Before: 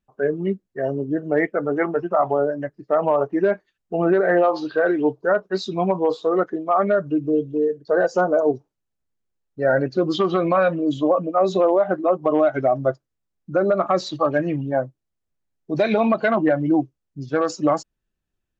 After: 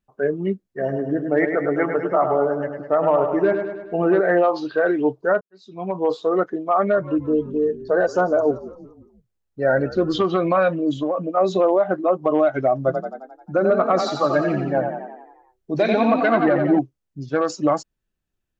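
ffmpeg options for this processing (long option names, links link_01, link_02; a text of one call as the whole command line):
ffmpeg -i in.wav -filter_complex "[0:a]asplit=3[link_01][link_02][link_03];[link_01]afade=type=out:start_time=0.79:duration=0.02[link_04];[link_02]aecho=1:1:103|206|309|412|515|618|721:0.473|0.26|0.143|0.0787|0.0433|0.0238|0.0131,afade=type=in:start_time=0.79:duration=0.02,afade=type=out:start_time=4.19:duration=0.02[link_05];[link_03]afade=type=in:start_time=4.19:duration=0.02[link_06];[link_04][link_05][link_06]amix=inputs=3:normalize=0,asplit=3[link_07][link_08][link_09];[link_07]afade=type=out:start_time=6.93:duration=0.02[link_10];[link_08]asplit=5[link_11][link_12][link_13][link_14][link_15];[link_12]adelay=172,afreqshift=-61,volume=-17dB[link_16];[link_13]adelay=344,afreqshift=-122,volume=-23.6dB[link_17];[link_14]adelay=516,afreqshift=-183,volume=-30.1dB[link_18];[link_15]adelay=688,afreqshift=-244,volume=-36.7dB[link_19];[link_11][link_16][link_17][link_18][link_19]amix=inputs=5:normalize=0,afade=type=in:start_time=6.93:duration=0.02,afade=type=out:start_time=10.24:duration=0.02[link_20];[link_09]afade=type=in:start_time=10.24:duration=0.02[link_21];[link_10][link_20][link_21]amix=inputs=3:normalize=0,asettb=1/sr,asplit=3[link_22][link_23][link_24];[link_22]atrim=end=10.904[link_25];[link_23]atrim=start=10.9:end=11.37,asetpts=PTS-STARTPTS,afade=type=in:duration=0.004:curve=qsin,afade=type=out:start_time=0.466:duration=0.004:curve=qsin,acompressor=threshold=-18dB:ratio=6:attack=3.2:release=140:knee=1:detection=peak[link_26];[link_24]atrim=start=11.366[link_27];[link_25][link_26]acrossfade=duration=0.004:curve1=hsin:curve2=qsin[link_28];[link_28][link_27]acrossfade=duration=0.004:curve1=qsin:curve2=hsin,asettb=1/sr,asplit=3[link_29][link_30][link_31];[link_29]atrim=end=12.784[link_32];[link_30]atrim=start=12.78:end=16.79,asetpts=PTS-STARTPTS,afade=type=in:duration=0.004:curve=qsin,afade=type=out:start_time=4.006:duration=0.004:curve=qsin,asplit=9[link_33][link_34][link_35][link_36][link_37][link_38][link_39][link_40][link_41];[link_34]adelay=88,afreqshift=31,volume=-5.5dB[link_42];[link_35]adelay=176,afreqshift=62,volume=-10.4dB[link_43];[link_36]adelay=264,afreqshift=93,volume=-15.3dB[link_44];[link_37]adelay=352,afreqshift=124,volume=-20.1dB[link_45];[link_38]adelay=440,afreqshift=155,volume=-25dB[link_46];[link_39]adelay=528,afreqshift=186,volume=-29.9dB[link_47];[link_40]adelay=616,afreqshift=217,volume=-34.8dB[link_48];[link_41]adelay=704,afreqshift=248,volume=-39.7dB[link_49];[link_33][link_42][link_43][link_44][link_45][link_46][link_47][link_48][link_49]amix=inputs=9:normalize=0,atrim=end_sample=176841[link_50];[link_31]atrim=start=16.786[link_51];[link_32][link_50]acrossfade=duration=0.004:curve1=hsin:curve2=qsin[link_52];[link_52][link_51]acrossfade=duration=0.004:curve1=qsin:curve2=hsin,asplit=2[link_53][link_54];[link_53]atrim=end=5.41,asetpts=PTS-STARTPTS,afade=type=out:start_time=5.406:duration=0.004:curve=hsin[link_55];[link_54]atrim=start=5.41,asetpts=PTS-STARTPTS,afade=type=in:duration=0.67:curve=qua[link_56];[link_55][link_56]concat=n=2:v=0:a=1" out.wav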